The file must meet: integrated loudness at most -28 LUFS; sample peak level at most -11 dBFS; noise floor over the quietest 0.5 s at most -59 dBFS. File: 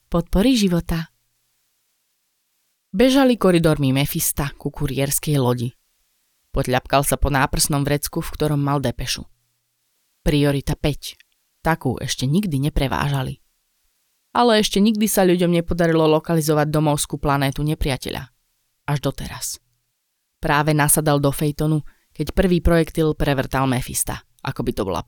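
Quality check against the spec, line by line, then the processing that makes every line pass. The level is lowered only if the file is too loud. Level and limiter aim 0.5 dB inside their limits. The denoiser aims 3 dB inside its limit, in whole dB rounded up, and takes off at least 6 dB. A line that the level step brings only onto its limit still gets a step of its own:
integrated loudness -20.0 LUFS: fail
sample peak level -3.5 dBFS: fail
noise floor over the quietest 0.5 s -73 dBFS: OK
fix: gain -8.5 dB

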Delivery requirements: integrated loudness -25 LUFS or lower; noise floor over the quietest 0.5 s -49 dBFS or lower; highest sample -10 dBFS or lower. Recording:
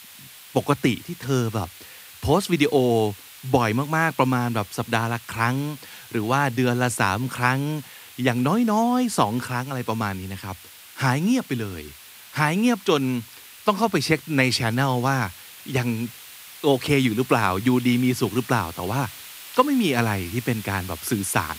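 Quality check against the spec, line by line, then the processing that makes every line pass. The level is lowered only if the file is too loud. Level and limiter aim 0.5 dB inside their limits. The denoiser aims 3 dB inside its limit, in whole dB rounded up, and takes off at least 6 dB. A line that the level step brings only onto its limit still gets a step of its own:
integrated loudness -23.0 LUFS: fail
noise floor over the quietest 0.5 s -45 dBFS: fail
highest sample -2.5 dBFS: fail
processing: denoiser 6 dB, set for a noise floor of -45 dBFS; gain -2.5 dB; limiter -10.5 dBFS

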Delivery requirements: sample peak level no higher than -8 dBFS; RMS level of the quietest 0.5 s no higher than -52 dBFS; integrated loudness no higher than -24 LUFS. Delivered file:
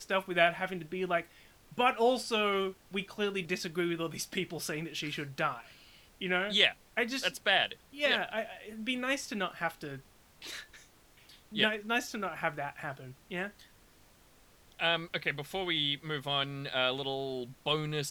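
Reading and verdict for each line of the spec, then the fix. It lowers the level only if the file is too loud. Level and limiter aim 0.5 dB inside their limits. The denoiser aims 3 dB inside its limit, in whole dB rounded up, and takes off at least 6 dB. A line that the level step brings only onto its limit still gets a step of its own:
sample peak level -10.0 dBFS: OK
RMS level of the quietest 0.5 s -61 dBFS: OK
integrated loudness -32.0 LUFS: OK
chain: none

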